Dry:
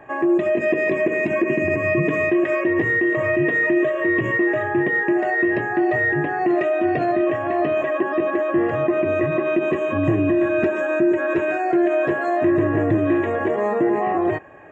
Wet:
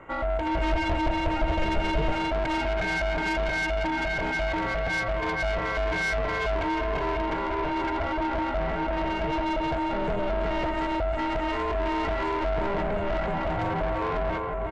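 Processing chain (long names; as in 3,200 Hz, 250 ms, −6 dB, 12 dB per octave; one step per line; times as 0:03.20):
repeating echo 366 ms, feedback 44%, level −6 dB
soft clipping −21 dBFS, distortion −9 dB
ring modulation 300 Hz
0:00.51–0:02.13: low-shelf EQ 67 Hz +10.5 dB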